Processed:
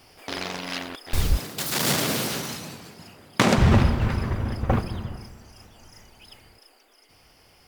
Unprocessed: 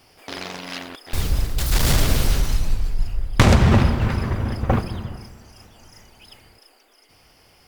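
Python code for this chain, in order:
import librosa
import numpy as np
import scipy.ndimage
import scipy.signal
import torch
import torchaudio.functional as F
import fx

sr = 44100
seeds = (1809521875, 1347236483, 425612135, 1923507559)

y = fx.highpass(x, sr, hz=160.0, slope=24, at=(1.37, 3.58))
y = fx.rider(y, sr, range_db=4, speed_s=2.0)
y = y * librosa.db_to_amplitude(-3.0)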